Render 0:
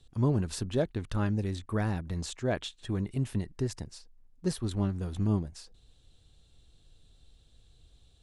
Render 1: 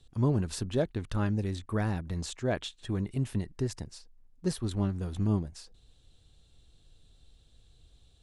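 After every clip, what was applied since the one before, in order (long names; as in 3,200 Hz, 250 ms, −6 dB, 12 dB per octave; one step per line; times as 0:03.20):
no processing that can be heard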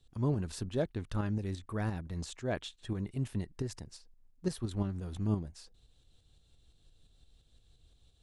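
shaped tremolo saw up 5.8 Hz, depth 50%
level −2 dB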